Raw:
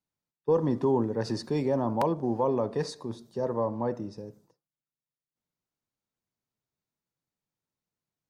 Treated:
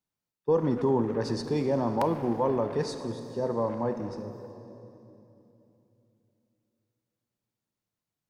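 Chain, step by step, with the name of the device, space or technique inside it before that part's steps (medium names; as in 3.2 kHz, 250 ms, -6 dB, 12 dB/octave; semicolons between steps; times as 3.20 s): saturated reverb return (on a send at -6 dB: reverberation RT60 2.9 s, pre-delay 24 ms + saturation -26.5 dBFS, distortion -11 dB)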